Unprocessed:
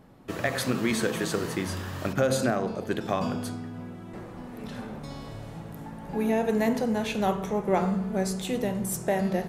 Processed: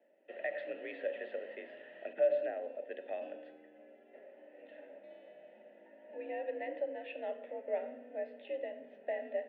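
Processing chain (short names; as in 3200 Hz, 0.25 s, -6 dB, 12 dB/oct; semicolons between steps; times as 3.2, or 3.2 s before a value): vowel filter e; mistuned SSB +54 Hz 150–3300 Hz; gain -2.5 dB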